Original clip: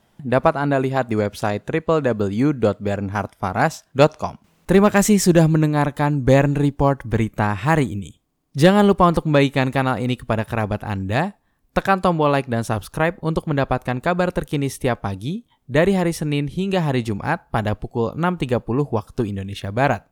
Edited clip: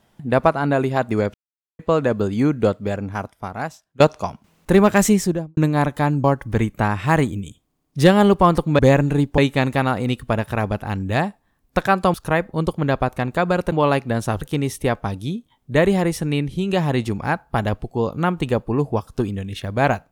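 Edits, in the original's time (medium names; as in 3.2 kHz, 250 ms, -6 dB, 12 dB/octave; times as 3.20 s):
1.34–1.79 s: mute
2.68–4.00 s: fade out, to -20.5 dB
5.04–5.57 s: studio fade out
6.24–6.83 s: move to 9.38 s
12.14–12.83 s: move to 14.41 s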